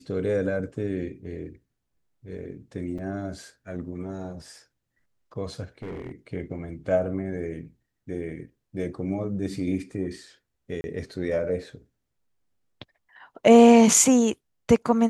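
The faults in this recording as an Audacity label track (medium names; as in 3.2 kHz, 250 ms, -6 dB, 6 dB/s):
2.980000	2.980000	dropout 4.9 ms
5.820000	6.120000	clipped -31.5 dBFS
10.810000	10.840000	dropout 31 ms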